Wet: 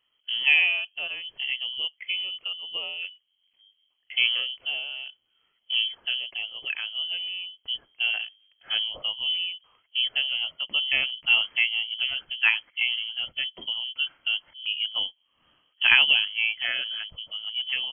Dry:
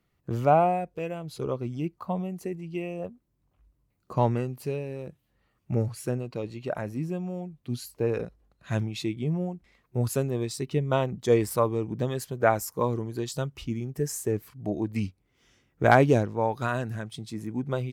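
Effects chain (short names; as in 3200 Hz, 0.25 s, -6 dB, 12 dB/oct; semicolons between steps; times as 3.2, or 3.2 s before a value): inverted band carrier 3200 Hz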